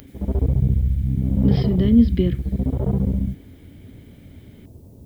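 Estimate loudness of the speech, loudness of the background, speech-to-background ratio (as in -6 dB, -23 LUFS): -20.0 LUFS, -22.5 LUFS, 2.5 dB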